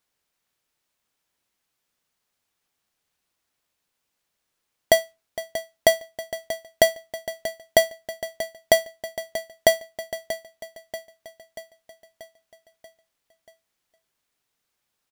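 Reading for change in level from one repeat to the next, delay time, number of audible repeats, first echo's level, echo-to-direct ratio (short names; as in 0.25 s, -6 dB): -5.0 dB, 0.635 s, 5, -13.0 dB, -11.5 dB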